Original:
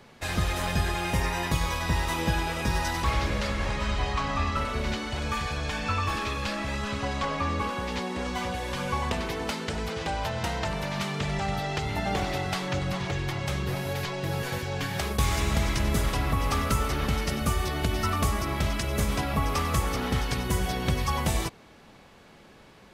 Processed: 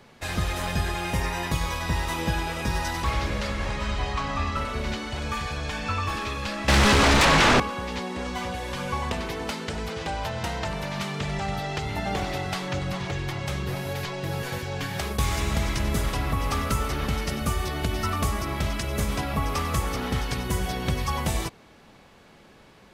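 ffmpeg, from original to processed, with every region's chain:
-filter_complex "[0:a]asettb=1/sr,asplit=3[a][b][c];[a]atrim=end=6.684[d];[b]atrim=start=6.68:end=7.6,asetpts=PTS-STARTPTS,afade=t=in:d=0.004:c=qsin,afade=t=out:st=0.916:d=0.004:c=qsin,asubboost=boost=7:cutoff=190,aeval=exprs='0.188*sin(PI/2*5.62*val(0)/0.188)':c=same[e];[c]atrim=start=7.596[f];[d][e]acrossfade=d=0.004:c1=hsin:c2=qsin[g];[g][f]acrossfade=d=0.004:c1=qsin:c2=hsin"

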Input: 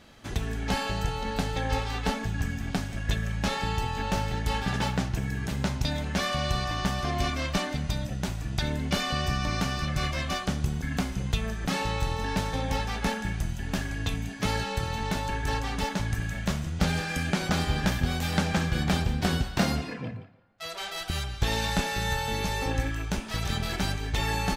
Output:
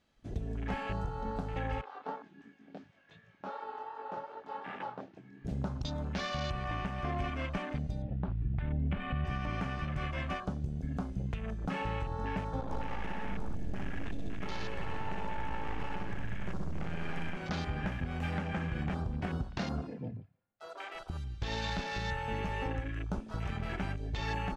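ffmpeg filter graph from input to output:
-filter_complex "[0:a]asettb=1/sr,asplit=3[a][b][c];[a]atrim=end=1.814[d];[b]atrim=start=1.81:end=5.45,asetpts=PTS-STARTPTS,afade=t=in:d=0.004:c=qsin,afade=t=out:st=3.636:d=0.004:c=qsin,flanger=delay=20:depth=5.5:speed=2.7,highpass=390,lowpass=3.4k[e];[c]atrim=start=5.446[f];[d][e]acrossfade=d=0.004:c1=hsin:c2=qsin[g];[g][f]acrossfade=d=0.004:c1=qsin:c2=hsin,asettb=1/sr,asplit=3[h][i][j];[h]atrim=end=8.024[k];[i]atrim=start=8.02:end=9.25,asetpts=PTS-STARTPTS,afade=t=in:d=0.004:c=qsin,afade=t=out:st=1.226:d=0.004:c=qsin,lowpass=f=3.1k:w=0.5412,lowpass=f=3.1k:w=1.3066,asubboost=boost=8:cutoff=220[l];[j]atrim=start=9.246[m];[k][l]acrossfade=d=0.004:c1=hsin:c2=qsin[n];[n][m]acrossfade=d=0.004:c1=qsin:c2=hsin,asettb=1/sr,asplit=3[o][p][q];[o]atrim=end=12.614[r];[p]atrim=start=12.61:end=17.37,asetpts=PTS-STARTPTS,afade=t=in:d=0.004:c=qsin,afade=t=out:st=4.756:d=0.004:c=qsin,aeval=exprs='max(val(0),0)':c=same,aecho=1:1:60|126|198.6|278.5|366.3|462.9|569.2:0.794|0.631|0.501|0.398|0.316|0.251|0.2,atrim=end_sample=209916[s];[q]atrim=start=17.366[t];[r][s]acrossfade=d=0.004:c1=hsin:c2=qsin[u];[u][t]acrossfade=d=0.004:c1=qsin:c2=hsin,afwtdn=0.0178,lowpass=10k,alimiter=limit=-20dB:level=0:latency=1:release=200,volume=-4.5dB"

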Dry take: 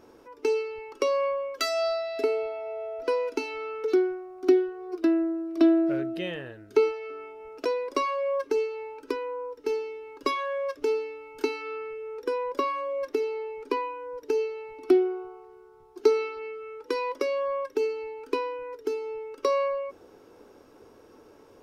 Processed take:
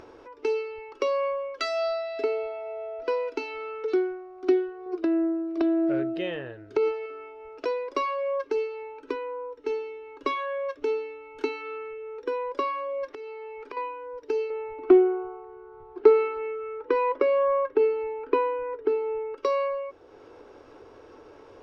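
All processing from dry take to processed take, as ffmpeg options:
-filter_complex "[0:a]asettb=1/sr,asplit=3[a][b][c];[a]atrim=end=4.864[d];[b]atrim=start=4.86:end=7.06,asetpts=PTS-STARTPTS,afade=t=in:d=0.004:c=qsin,afade=t=out:st=2.196:d=0.004:c=qsin,equalizer=f=250:w=0.31:g=5,acompressor=threshold=-18dB:ratio=6:attack=3.2:release=140:knee=1:detection=peak[e];[c]atrim=start=7.056[f];[d][e]acrossfade=d=0.004:c1=hsin:c2=qsin[g];[g][f]acrossfade=d=0.004:c1=qsin:c2=hsin,asettb=1/sr,asplit=3[h][i][j];[h]atrim=end=8.824[k];[i]atrim=start=8.82:end=12.47,asetpts=PTS-STARTPTS,afade=t=in:d=0.004:c=qsin,afade=t=out:st=3.646:d=0.004:c=qsin,equalizer=f=270:w=4.2:g=3.5,bandreject=f=4.9k:w=8.1[l];[j]atrim=start=12.466[m];[k][l]acrossfade=d=0.004:c1=hsin:c2=qsin[n];[n][m]acrossfade=d=0.004:c1=qsin:c2=hsin,asettb=1/sr,asplit=3[o][p][q];[o]atrim=end=13.104[r];[p]atrim=start=13.1:end=13.77,asetpts=PTS-STARTPTS,afade=t=in:d=0.004:c=qsin,afade=t=out:st=0.666:d=0.004:c=qsin,equalizer=f=1.6k:w=0.6:g=6,acompressor=threshold=-35dB:ratio=8:attack=3.2:release=140:knee=1:detection=peak[s];[q]atrim=start=13.766[t];[r][s]acrossfade=d=0.004:c1=hsin:c2=qsin[u];[u][t]acrossfade=d=0.004:c1=qsin:c2=hsin,asettb=1/sr,asplit=3[v][w][x];[v]atrim=end=14.504[y];[w]atrim=start=14.5:end=19.37,asetpts=PTS-STARTPTS,afade=t=in:d=0.004:c=qsin,afade=t=out:st=4.866:d=0.004:c=qsin,acontrast=62,lowpass=1.9k[z];[x]atrim=start=19.366[aa];[y][z]acrossfade=d=0.004:c1=hsin:c2=qsin[ab];[ab][aa]acrossfade=d=0.004:c1=qsin:c2=hsin,lowpass=4.1k,equalizer=f=200:t=o:w=0.79:g=-10.5,acompressor=mode=upward:threshold=-41dB:ratio=2.5"

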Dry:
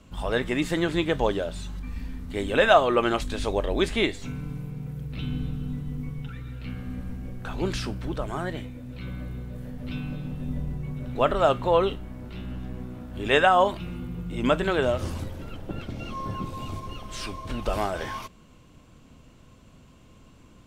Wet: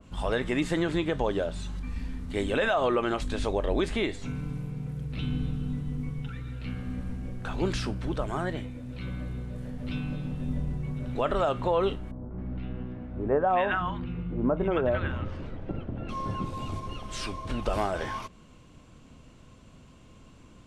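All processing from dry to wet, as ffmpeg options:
-filter_complex "[0:a]asettb=1/sr,asplit=3[a][b][c];[a]atrim=end=12.114[d];[b]atrim=start=12.11:end=16.09,asetpts=PTS-STARTPTS,afade=t=in:d=0.004:c=qsin,afade=t=out:st=3.976:d=0.004:c=qsin,lowpass=2k,acrossover=split=1200[e][f];[f]adelay=270[g];[e][g]amix=inputs=2:normalize=0,atrim=end_sample=175518[h];[c]atrim=start=16.086[i];[d][h]acrossfade=d=0.004:c1=hsin:c2=qsin[j];[j][i]acrossfade=d=0.004:c1=qsin:c2=hsin,lowpass=f=11k:w=0.5412,lowpass=f=11k:w=1.3066,alimiter=limit=-16dB:level=0:latency=1:release=84,adynamicequalizer=threshold=0.00708:dfrequency=2100:dqfactor=0.7:tfrequency=2100:tqfactor=0.7:attack=5:release=100:ratio=0.375:range=2:mode=cutabove:tftype=highshelf"

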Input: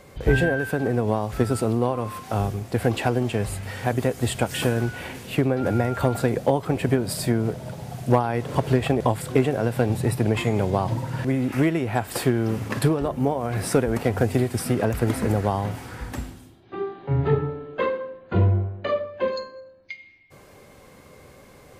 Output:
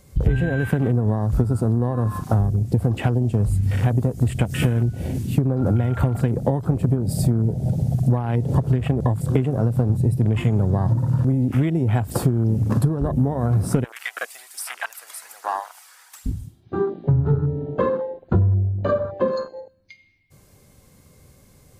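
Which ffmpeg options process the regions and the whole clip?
-filter_complex "[0:a]asettb=1/sr,asplit=3[a][b][c];[a]atrim=end=13.844[d];[b]atrim=start=13.84:end=16.26,asetpts=PTS-STARTPTS,afade=t=in:d=0.004:c=qsin,afade=t=out:st=2.416:d=0.004:c=qsin,highpass=f=900:w=0.5412,highpass=f=900:w=1.3066,aphaser=in_gain=1:out_gain=1:delay=1.8:decay=0.35:speed=1.2:type=sinusoidal,asoftclip=type=hard:threshold=-22dB[e];[c]atrim=start=16.256[f];[d][e]acrossfade=d=0.004:c1=hsin:c2=qsin[g];[g][f]acrossfade=d=0.004:c1=qsin:c2=hsin,afwtdn=0.0282,bass=f=250:g=13,treble=f=4k:g=13,acompressor=threshold=-21dB:ratio=10,volume=5.5dB"

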